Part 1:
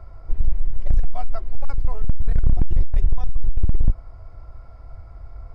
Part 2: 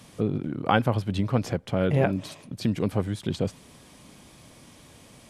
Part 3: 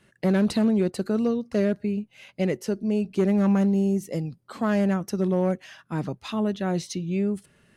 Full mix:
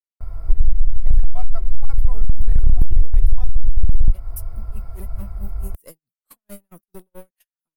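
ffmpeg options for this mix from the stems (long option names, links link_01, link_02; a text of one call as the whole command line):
ffmpeg -i stem1.wav -i stem2.wav -i stem3.wav -filter_complex "[0:a]bandreject=frequency=560:width=12,acompressor=threshold=-19dB:ratio=6,adelay=200,volume=3dB[link_01];[2:a]aemphasis=mode=production:type=bsi,aeval=exprs='(tanh(20*val(0)+0.35)-tanh(0.35))/20':channel_layout=same,aeval=exprs='val(0)*pow(10,-36*(0.5-0.5*cos(2*PI*4.6*n/s))/20)':channel_layout=same,adelay=1750,volume=-6.5dB,afade=type=in:start_time=4.12:duration=0.44:silence=0.298538[link_02];[link_01][link_02]amix=inputs=2:normalize=0,agate=range=-28dB:threshold=-49dB:ratio=16:detection=peak,lowshelf=frequency=76:gain=10.5,aexciter=amount=5:drive=8.6:freq=9000" out.wav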